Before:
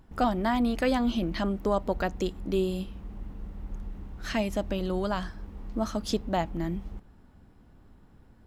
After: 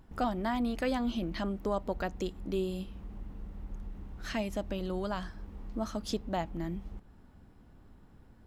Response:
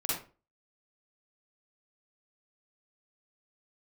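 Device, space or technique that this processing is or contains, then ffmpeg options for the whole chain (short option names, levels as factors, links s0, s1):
parallel compression: -filter_complex "[0:a]asplit=2[s0][s1];[s1]acompressor=threshold=0.00794:ratio=6,volume=0.841[s2];[s0][s2]amix=inputs=2:normalize=0,volume=0.473"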